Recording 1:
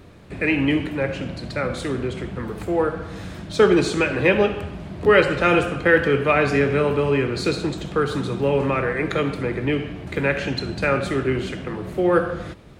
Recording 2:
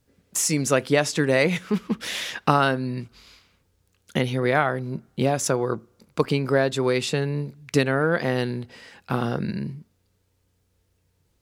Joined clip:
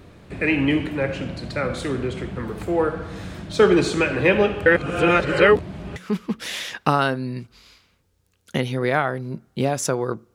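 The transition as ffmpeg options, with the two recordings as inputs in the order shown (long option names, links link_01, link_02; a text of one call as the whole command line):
ffmpeg -i cue0.wav -i cue1.wav -filter_complex "[0:a]apad=whole_dur=10.34,atrim=end=10.34,asplit=2[link_01][link_02];[link_01]atrim=end=4.662[link_03];[link_02]atrim=start=4.658:end=5.962,asetpts=PTS-STARTPTS,areverse[link_04];[1:a]atrim=start=1.568:end=5.95[link_05];[link_03][link_04]acrossfade=duration=0.004:curve1=hsin:curve2=hsin[link_06];[link_06][link_05]acrossfade=duration=0.004:curve1=hsin:curve2=hsin" out.wav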